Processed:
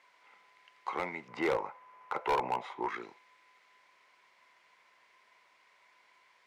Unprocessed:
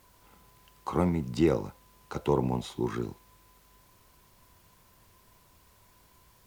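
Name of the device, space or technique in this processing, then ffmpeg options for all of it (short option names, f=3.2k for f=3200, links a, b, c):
megaphone: -filter_complex "[0:a]asettb=1/sr,asplit=3[a][b][c];[a]atrim=end=1.284[d];[b]atrim=start=1.28:end=2.89,asetpts=PTS-STARTPTS,afade=t=in:d=0.004:c=qsin,afade=t=out:st=1.606:d=0.004:c=qsin,equalizer=f=125:t=o:w=1:g=7,equalizer=f=500:t=o:w=1:g=5,equalizer=f=1k:t=o:w=1:g=10,equalizer=f=4k:t=o:w=1:g=-8,equalizer=f=8k:t=o:w=1:g=-6[e];[c]atrim=start=2.886[f];[d][e]acrossfade=d=0.004:c1=hsin:c2=qsin[g];[g][f]acrossfade=d=0.004:c1=qsin:c2=hsin,highpass=640,lowpass=4k,equalizer=f=2.1k:t=o:w=0.42:g=11.5,asoftclip=type=hard:threshold=-22.5dB,volume=-1.5dB"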